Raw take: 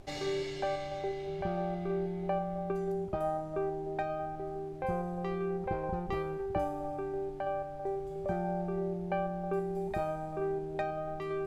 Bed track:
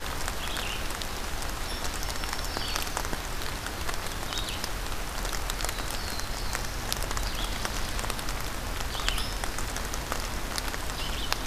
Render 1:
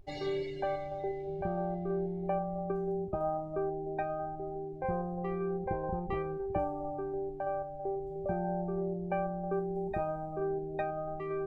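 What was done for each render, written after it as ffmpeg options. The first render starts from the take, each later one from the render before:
-af "afftdn=nr=17:nf=-41"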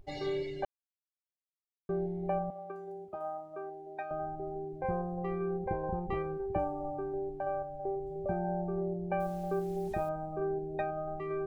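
-filter_complex "[0:a]asettb=1/sr,asplit=3[a][b][c];[a]atrim=end=2.504[d];[b]atrim=start=2.5:end=4.11,asetpts=PTS-STARTPTS,afade=t=in:d=0.004:c=qsin,afade=t=out:st=1.606:d=0.004:c=qsin,highpass=f=1.1k:p=1[e];[c]atrim=start=4.106[f];[d][e]acrossfade=d=0.004:c1=hsin:c2=qsin[g];[g][f]acrossfade=d=0.004:c1=qsin:c2=hsin,asettb=1/sr,asplit=3[h][i][j];[h]atrim=end=9.204[k];[i]atrim=start=9.2:end=10.09,asetpts=PTS-STARTPTS,afade=t=in:d=0.004:c=qsin,afade=t=out:st=0.886:d=0.004:c=qsin,acrusher=bits=8:mix=0:aa=0.5[l];[j]atrim=start=10.086[m];[k][l]acrossfade=d=0.004:c1=hsin:c2=qsin[n];[n][m]acrossfade=d=0.004:c1=qsin:c2=hsin,asplit=3[o][p][q];[o]atrim=end=0.65,asetpts=PTS-STARTPTS,afade=t=out:st=0.646:d=0.004:c=hsin[r];[p]atrim=start=0.65:end=1.89,asetpts=PTS-STARTPTS,volume=0[s];[q]atrim=start=1.89,asetpts=PTS-STARTPTS,afade=t=in:d=0.004:c=hsin[t];[r][s][t]concat=n=3:v=0:a=1"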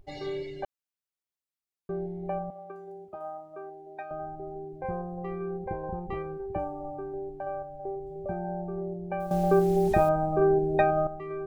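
-filter_complex "[0:a]asplit=3[a][b][c];[a]atrim=end=9.312[d];[b]atrim=start=9.308:end=11.072,asetpts=PTS-STARTPTS,volume=11.5dB[e];[c]atrim=start=11.068[f];[d][e]acrossfade=d=0.004:c1=hsin:c2=hsin[g];[g][f]acrossfade=d=0.004:c1=hsin:c2=hsin"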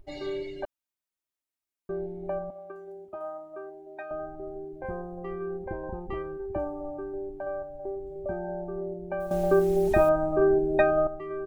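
-af "equalizer=f=4.6k:t=o:w=0.77:g=-2.5,aecho=1:1:3.2:0.5"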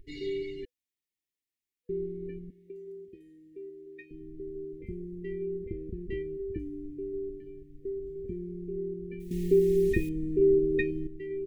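-af "afftfilt=real='re*(1-between(b*sr/4096,490,1700))':imag='im*(1-between(b*sr/4096,490,1700))':win_size=4096:overlap=0.75,bass=f=250:g=0,treble=f=4k:g=-3"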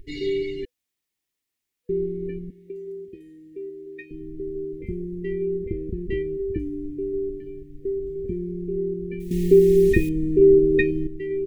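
-af "volume=8.5dB"

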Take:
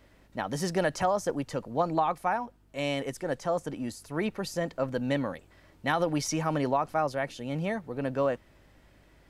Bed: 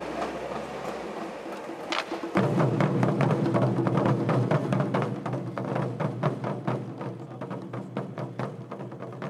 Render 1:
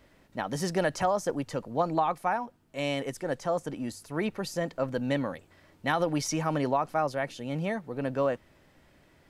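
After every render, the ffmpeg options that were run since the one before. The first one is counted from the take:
-af "bandreject=f=50:t=h:w=4,bandreject=f=100:t=h:w=4"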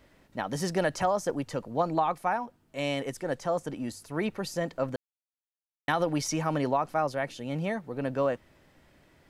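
-filter_complex "[0:a]asplit=3[a][b][c];[a]atrim=end=4.96,asetpts=PTS-STARTPTS,afade=t=out:st=4.956:d=0.004:c=hsin[d];[b]atrim=start=4.96:end=5.88,asetpts=PTS-STARTPTS,volume=0[e];[c]atrim=start=5.88,asetpts=PTS-STARTPTS,afade=t=in:d=0.004:c=hsin[f];[d][e][f]concat=n=3:v=0:a=1"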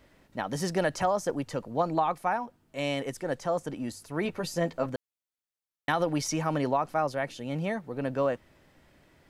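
-filter_complex "[0:a]asettb=1/sr,asplit=3[a][b][c];[a]atrim=end=4.244[d];[b]atrim=start=4.24:end=4.86,asetpts=PTS-STARTPTS,afade=t=in:d=0.004:c=qsin,afade=t=out:st=0.616:d=0.004:c=qsin,asplit=2[e][f];[f]adelay=12,volume=-5dB[g];[e][g]amix=inputs=2:normalize=0,atrim=end_sample=27342[h];[c]atrim=start=4.856[i];[d][h]acrossfade=d=0.004:c1=hsin:c2=qsin[j];[j][i]acrossfade=d=0.004:c1=qsin:c2=hsin"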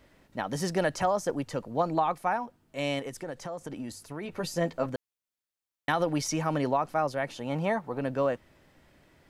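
-filter_complex "[0:a]asettb=1/sr,asplit=3[a][b][c];[a]atrim=end=2.994[d];[b]atrim=start=2.99:end=4.34,asetpts=PTS-STARTPTS,afade=t=in:d=0.004:c=qsin,afade=t=out:st=1.346:d=0.004:c=qsin,acompressor=threshold=-32dB:ratio=12:attack=3.2:release=140:knee=1:detection=peak[e];[c]atrim=start=4.336[f];[d][e]acrossfade=d=0.004:c1=hsin:c2=qsin[g];[g][f]acrossfade=d=0.004:c1=qsin:c2=hsin,asettb=1/sr,asplit=3[h][i][j];[h]atrim=end=7.294[k];[i]atrim=start=7.29:end=7.99,asetpts=PTS-STARTPTS,afade=t=in:d=0.004:c=qsin,afade=t=out:st=0.696:d=0.004:c=qsin,equalizer=f=950:t=o:w=1.1:g=10.5[l];[j]atrim=start=7.986[m];[k][l]acrossfade=d=0.004:c1=hsin:c2=qsin[n];[n][m]acrossfade=d=0.004:c1=qsin:c2=hsin"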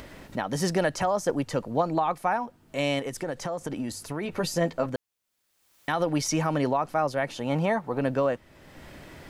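-filter_complex "[0:a]asplit=2[a][b];[b]acompressor=mode=upward:threshold=-30dB:ratio=2.5,volume=-2.5dB[c];[a][c]amix=inputs=2:normalize=0,alimiter=limit=-14dB:level=0:latency=1:release=302"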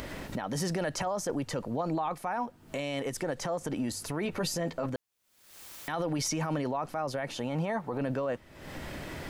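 -af "acompressor=mode=upward:threshold=-32dB:ratio=2.5,alimiter=limit=-23dB:level=0:latency=1:release=26"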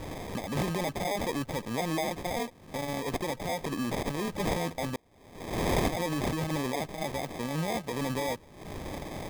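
-af "aexciter=amount=11.7:drive=5:freq=11k,acrusher=samples=31:mix=1:aa=0.000001"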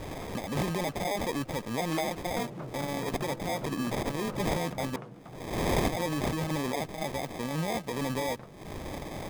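-filter_complex "[1:a]volume=-16.5dB[a];[0:a][a]amix=inputs=2:normalize=0"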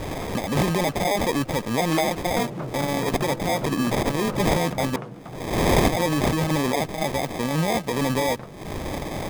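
-af "volume=8.5dB"

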